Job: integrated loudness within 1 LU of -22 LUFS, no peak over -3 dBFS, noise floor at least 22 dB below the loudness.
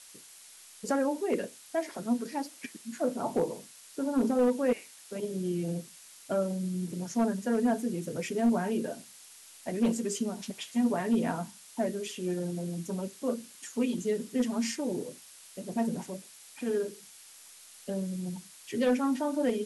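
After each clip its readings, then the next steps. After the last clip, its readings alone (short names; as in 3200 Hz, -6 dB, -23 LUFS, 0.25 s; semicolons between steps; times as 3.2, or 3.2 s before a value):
clipped 0.4%; flat tops at -19.5 dBFS; noise floor -53 dBFS; noise floor target -54 dBFS; loudness -31.5 LUFS; peak -19.5 dBFS; loudness target -22.0 LUFS
-> clip repair -19.5 dBFS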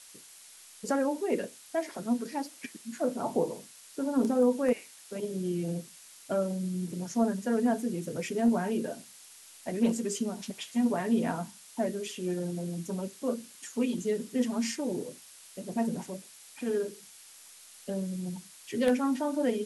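clipped 0.0%; noise floor -53 dBFS; noise floor target -54 dBFS
-> noise print and reduce 6 dB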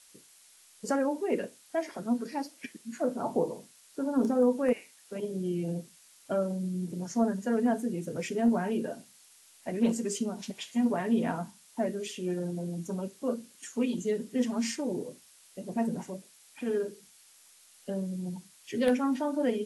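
noise floor -59 dBFS; loudness -31.5 LUFS; peak -11.0 dBFS; loudness target -22.0 LUFS
-> gain +9.5 dB; limiter -3 dBFS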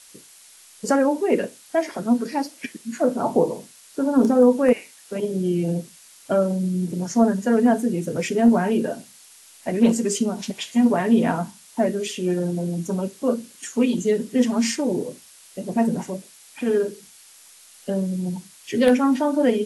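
loudness -22.0 LUFS; peak -3.0 dBFS; noise floor -49 dBFS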